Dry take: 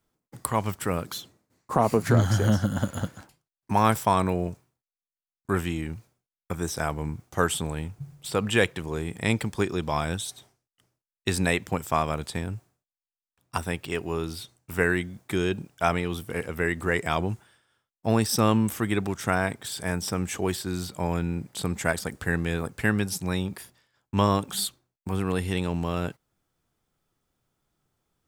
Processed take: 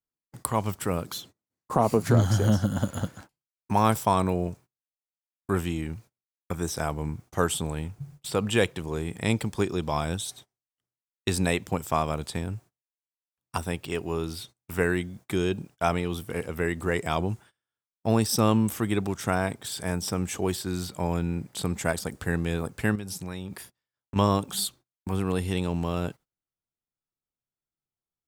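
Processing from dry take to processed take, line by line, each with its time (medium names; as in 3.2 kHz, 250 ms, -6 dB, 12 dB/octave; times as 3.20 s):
22.95–24.16 s: compression, threshold -31 dBFS
whole clip: gate -47 dBFS, range -22 dB; dynamic bell 1.8 kHz, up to -5 dB, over -42 dBFS, Q 1.4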